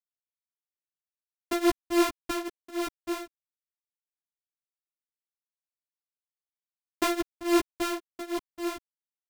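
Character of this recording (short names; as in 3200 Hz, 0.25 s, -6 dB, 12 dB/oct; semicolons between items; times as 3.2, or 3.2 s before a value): a buzz of ramps at a fixed pitch in blocks of 128 samples; tremolo triangle 3.6 Hz, depth 95%; a quantiser's noise floor 12-bit, dither none; a shimmering, thickened sound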